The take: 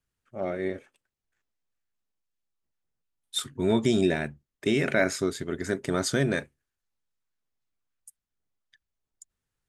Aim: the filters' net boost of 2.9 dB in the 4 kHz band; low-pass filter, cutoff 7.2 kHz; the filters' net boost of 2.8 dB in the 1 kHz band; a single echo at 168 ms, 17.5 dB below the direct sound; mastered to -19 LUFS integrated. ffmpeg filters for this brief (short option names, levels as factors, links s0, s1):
-af "lowpass=7200,equalizer=f=1000:t=o:g=4,equalizer=f=4000:t=o:g=3.5,aecho=1:1:168:0.133,volume=2.51"